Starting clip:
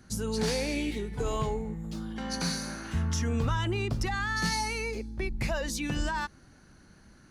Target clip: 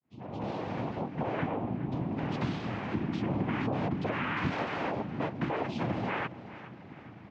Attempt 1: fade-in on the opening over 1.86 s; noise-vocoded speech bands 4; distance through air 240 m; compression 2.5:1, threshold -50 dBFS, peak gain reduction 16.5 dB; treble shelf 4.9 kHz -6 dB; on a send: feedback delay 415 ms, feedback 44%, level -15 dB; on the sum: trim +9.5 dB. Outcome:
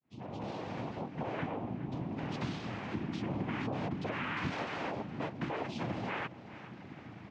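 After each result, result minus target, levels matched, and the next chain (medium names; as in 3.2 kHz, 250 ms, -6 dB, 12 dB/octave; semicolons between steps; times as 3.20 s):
compression: peak gain reduction +5 dB; 4 kHz band +3.0 dB
fade-in on the opening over 1.86 s; noise-vocoded speech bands 4; distance through air 240 m; compression 2.5:1, threshold -41.5 dBFS, peak gain reduction 11.5 dB; treble shelf 4.9 kHz -6 dB; on a send: feedback delay 415 ms, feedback 44%, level -15 dB; on the sum: trim +9.5 dB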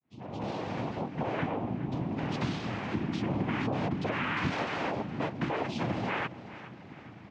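4 kHz band +3.0 dB
fade-in on the opening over 1.86 s; noise-vocoded speech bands 4; distance through air 240 m; compression 2.5:1, threshold -41.5 dBFS, peak gain reduction 11.5 dB; treble shelf 4.9 kHz -17 dB; on a send: feedback delay 415 ms, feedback 44%, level -15 dB; on the sum: trim +9.5 dB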